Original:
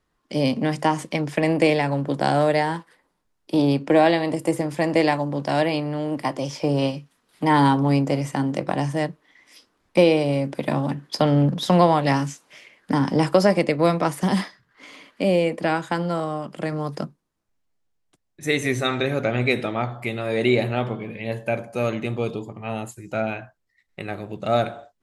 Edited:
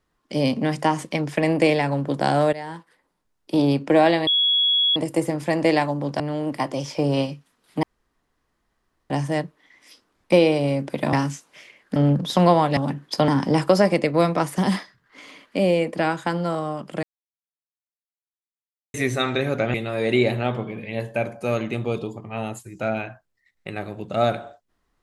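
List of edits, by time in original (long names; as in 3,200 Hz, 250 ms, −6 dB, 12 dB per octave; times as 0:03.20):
0:02.53–0:03.60: fade in equal-power, from −16.5 dB
0:04.27: insert tone 3,350 Hz −16 dBFS 0.69 s
0:05.51–0:05.85: remove
0:07.48–0:08.75: fill with room tone
0:10.78–0:11.29: swap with 0:12.10–0:12.93
0:16.68–0:18.59: silence
0:19.39–0:20.06: remove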